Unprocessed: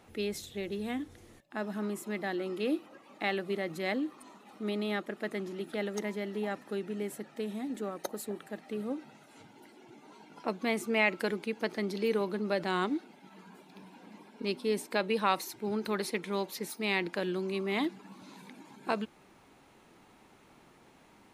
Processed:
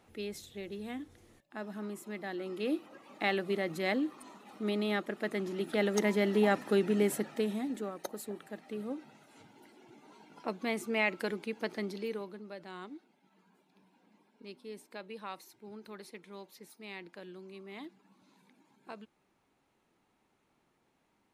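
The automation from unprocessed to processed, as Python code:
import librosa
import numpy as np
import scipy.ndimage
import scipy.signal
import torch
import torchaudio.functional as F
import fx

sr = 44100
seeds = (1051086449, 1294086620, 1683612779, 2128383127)

y = fx.gain(x, sr, db=fx.line((2.24, -5.5), (3.06, 1.0), (5.32, 1.0), (6.27, 8.0), (7.17, 8.0), (7.94, -3.0), (11.82, -3.0), (12.5, -15.0)))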